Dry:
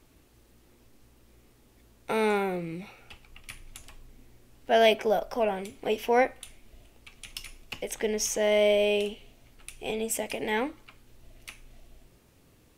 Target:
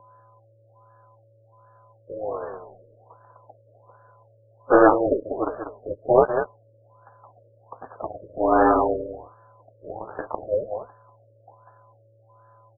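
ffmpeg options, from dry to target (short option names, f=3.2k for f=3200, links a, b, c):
-filter_complex "[0:a]highpass=62,adynamicequalizer=threshold=0.00398:dfrequency=1200:dqfactor=3.3:tfrequency=1200:tqfactor=3.3:attack=5:release=100:ratio=0.375:range=3:mode=cutabove:tftype=bell,asplit=3[a][b][c];[b]asetrate=22050,aresample=44100,atempo=2,volume=-1dB[d];[c]asetrate=52444,aresample=44100,atempo=0.840896,volume=-10dB[e];[a][d][e]amix=inputs=3:normalize=0,dynaudnorm=f=530:g=9:m=11.5dB,aeval=exprs='val(0)+0.0398*sin(2*PI*450*n/s)':c=same,aresample=11025,aeval=exprs='val(0)*gte(abs(val(0)),0.0211)':c=same,aresample=44100,aeval=exprs='0.944*(cos(1*acos(clip(val(0)/0.944,-1,1)))-cos(1*PI/2))+0.0237*(cos(6*acos(clip(val(0)/0.944,-1,1)))-cos(6*PI/2))+0.106*(cos(7*acos(clip(val(0)/0.944,-1,1)))-cos(7*PI/2))':c=same,lowshelf=f=650:t=q:w=3:g=-11,asplit=2[f][g];[g]aecho=0:1:193:0.376[h];[f][h]amix=inputs=2:normalize=0,highpass=f=370:t=q:w=0.5412,highpass=f=370:t=q:w=1.307,lowpass=f=3.4k:t=q:w=0.5176,lowpass=f=3.4k:t=q:w=0.7071,lowpass=f=3.4k:t=q:w=1.932,afreqshift=-340,afftfilt=real='re*lt(b*sr/1024,600*pow(1800/600,0.5+0.5*sin(2*PI*1.3*pts/sr)))':imag='im*lt(b*sr/1024,600*pow(1800/600,0.5+0.5*sin(2*PI*1.3*pts/sr)))':win_size=1024:overlap=0.75,volume=2dB"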